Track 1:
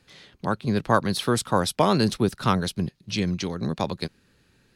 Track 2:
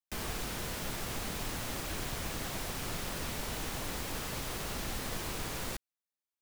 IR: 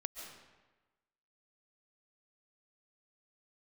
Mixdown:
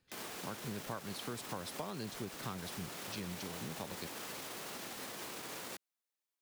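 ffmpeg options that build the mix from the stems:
-filter_complex "[0:a]volume=-15.5dB[a];[1:a]alimiter=level_in=11.5dB:limit=-24dB:level=0:latency=1,volume=-11.5dB,highpass=230,volume=1.5dB[b];[a][b]amix=inputs=2:normalize=0,acompressor=threshold=-38dB:ratio=6"

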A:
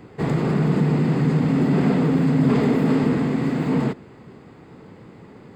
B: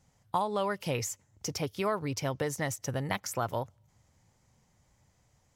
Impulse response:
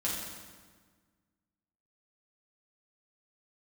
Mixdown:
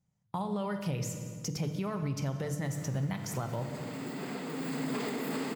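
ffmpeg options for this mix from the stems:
-filter_complex "[0:a]highpass=f=140:w=0.5412,highpass=f=140:w=1.3066,aemphasis=mode=production:type=riaa,adelay=2450,volume=-6.5dB,afade=t=in:st=3.13:d=0.51:silence=0.446684,afade=t=in:st=4.45:d=0.6:silence=0.421697[a];[1:a]agate=range=-17dB:threshold=-58dB:ratio=16:detection=peak,equalizer=f=150:w=1.2:g=14,bandreject=f=50:t=h:w=6,bandreject=f=100:t=h:w=6,bandreject=f=150:t=h:w=6,volume=-3.5dB,asplit=2[b][c];[c]volume=-9dB[d];[2:a]atrim=start_sample=2205[e];[d][e]afir=irnorm=-1:irlink=0[f];[a][b][f]amix=inputs=3:normalize=0,alimiter=level_in=1dB:limit=-24dB:level=0:latency=1:release=284,volume=-1dB"

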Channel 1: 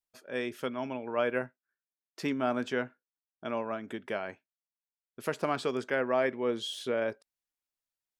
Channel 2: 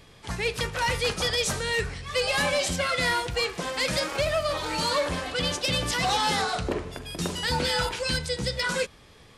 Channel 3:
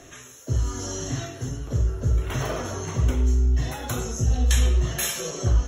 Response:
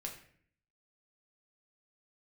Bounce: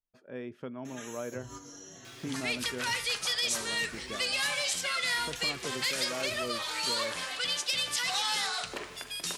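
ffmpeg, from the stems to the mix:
-filter_complex "[0:a]aemphasis=mode=reproduction:type=riaa,volume=-6dB,asplit=2[a][b];[1:a]tiltshelf=f=820:g=-10,acrusher=bits=8:mix=0:aa=0.5,adelay=2050,volume=-3dB[c];[2:a]highpass=f=250:p=1,acompressor=threshold=-39dB:ratio=6,asplit=2[d][e];[e]adelay=4.6,afreqshift=1.4[f];[d][f]amix=inputs=2:normalize=1,adelay=850,volume=2dB,asplit=2[g][h];[h]volume=-4dB[i];[b]apad=whole_len=288044[j];[g][j]sidechaingate=range=-33dB:threshold=-51dB:ratio=16:detection=peak[k];[3:a]atrim=start_sample=2205[l];[i][l]afir=irnorm=-1:irlink=0[m];[a][c][k][m]amix=inputs=4:normalize=0,equalizer=f=68:w=2:g=-13,acompressor=threshold=-42dB:ratio=1.5"

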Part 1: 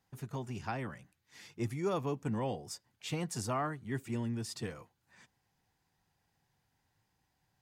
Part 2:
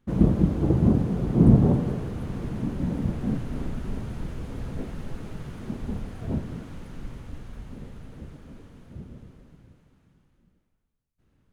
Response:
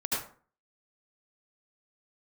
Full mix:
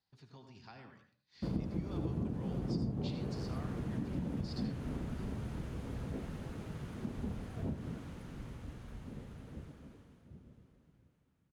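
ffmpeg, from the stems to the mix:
-filter_complex "[0:a]acompressor=threshold=-45dB:ratio=1.5,lowpass=f=4.4k:t=q:w=5.3,volume=-14.5dB,asplit=2[a][b];[b]volume=-11dB[c];[1:a]highpass=46,acompressor=threshold=-28dB:ratio=6,adelay=1350,volume=-5.5dB,afade=t=out:st=9.58:d=0.71:silence=0.375837[d];[2:a]atrim=start_sample=2205[e];[c][e]afir=irnorm=-1:irlink=0[f];[a][d][f]amix=inputs=3:normalize=0"

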